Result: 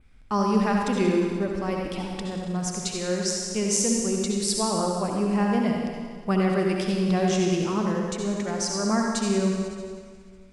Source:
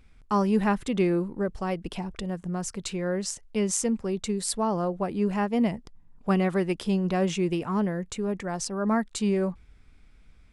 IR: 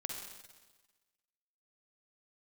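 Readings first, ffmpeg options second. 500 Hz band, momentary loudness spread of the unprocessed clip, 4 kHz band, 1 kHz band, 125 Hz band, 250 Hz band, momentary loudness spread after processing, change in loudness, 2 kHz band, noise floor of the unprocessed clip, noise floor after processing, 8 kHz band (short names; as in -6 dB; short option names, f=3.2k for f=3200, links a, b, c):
+2.0 dB, 7 LU, +6.5 dB, +2.5 dB, +2.0 dB, +2.0 dB, 8 LU, +2.5 dB, +3.0 dB, -55 dBFS, -47 dBFS, +6.0 dB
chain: -filter_complex "[0:a]adynamicequalizer=threshold=0.00282:dfrequency=5400:dqfactor=1.7:tfrequency=5400:tqfactor=1.7:attack=5:release=100:ratio=0.375:range=4:mode=boostabove:tftype=bell[a];[1:a]atrim=start_sample=2205,asetrate=31752,aresample=44100[b];[a][b]afir=irnorm=-1:irlink=0"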